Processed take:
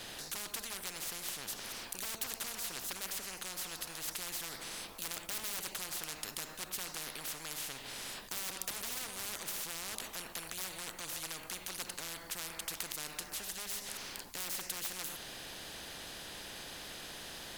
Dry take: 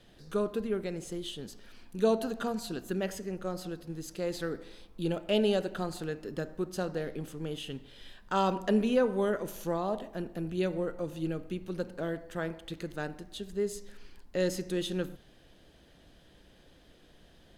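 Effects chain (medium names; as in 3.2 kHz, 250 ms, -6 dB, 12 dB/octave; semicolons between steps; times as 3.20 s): treble shelf 4.7 kHz +9 dB; wavefolder -27 dBFS; spectrum-flattening compressor 10:1; trim +13 dB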